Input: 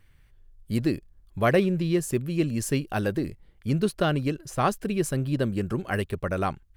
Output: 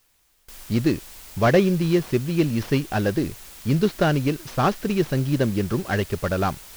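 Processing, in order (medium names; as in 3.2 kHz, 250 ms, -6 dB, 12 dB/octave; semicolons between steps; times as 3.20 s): CVSD coder 32 kbps; word length cut 8-bit, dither triangular; gate with hold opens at -41 dBFS; trim +4.5 dB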